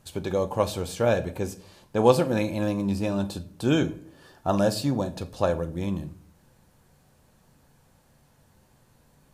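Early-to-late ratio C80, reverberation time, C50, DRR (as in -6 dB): 20.0 dB, 0.55 s, 16.5 dB, 9.0 dB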